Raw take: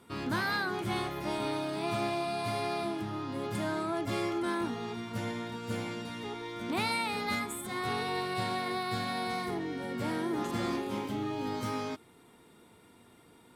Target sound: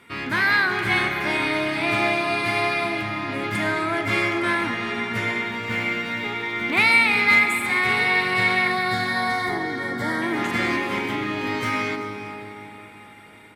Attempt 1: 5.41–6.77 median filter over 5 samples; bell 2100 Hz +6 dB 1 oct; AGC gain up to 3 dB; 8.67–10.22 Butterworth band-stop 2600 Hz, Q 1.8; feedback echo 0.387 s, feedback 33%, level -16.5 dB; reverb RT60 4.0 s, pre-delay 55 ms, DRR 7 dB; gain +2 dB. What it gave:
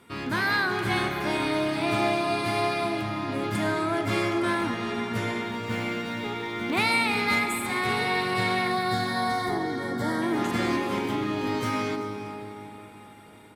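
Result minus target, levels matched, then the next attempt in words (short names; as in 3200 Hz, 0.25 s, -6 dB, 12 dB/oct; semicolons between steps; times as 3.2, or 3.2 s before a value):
2000 Hz band -3.5 dB
5.41–6.77 median filter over 5 samples; bell 2100 Hz +16.5 dB 1 oct; AGC gain up to 3 dB; 8.67–10.22 Butterworth band-stop 2600 Hz, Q 1.8; feedback echo 0.387 s, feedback 33%, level -16.5 dB; reverb RT60 4.0 s, pre-delay 55 ms, DRR 7 dB; gain +2 dB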